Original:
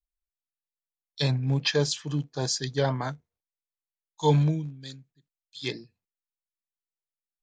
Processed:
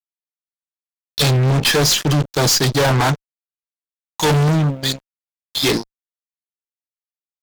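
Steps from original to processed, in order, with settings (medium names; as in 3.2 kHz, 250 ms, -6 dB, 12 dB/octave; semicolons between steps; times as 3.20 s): tracing distortion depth 0.026 ms; harmonic-percussive split percussive +4 dB; fuzz box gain 38 dB, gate -44 dBFS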